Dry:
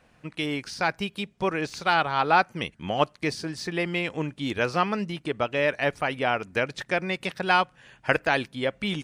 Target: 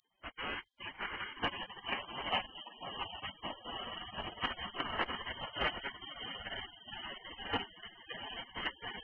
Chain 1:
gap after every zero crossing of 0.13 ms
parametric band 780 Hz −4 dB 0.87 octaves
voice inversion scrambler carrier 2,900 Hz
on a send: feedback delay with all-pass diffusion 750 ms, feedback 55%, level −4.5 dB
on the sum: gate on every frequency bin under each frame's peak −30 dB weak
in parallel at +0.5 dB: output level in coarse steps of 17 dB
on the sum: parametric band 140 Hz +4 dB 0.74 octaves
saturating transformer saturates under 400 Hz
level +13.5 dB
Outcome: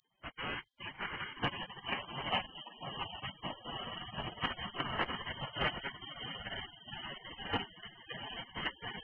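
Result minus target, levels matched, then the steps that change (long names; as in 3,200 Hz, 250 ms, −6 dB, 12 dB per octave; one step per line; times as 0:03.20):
125 Hz band +6.0 dB
change: second parametric band 140 Hz −7 dB 0.74 octaves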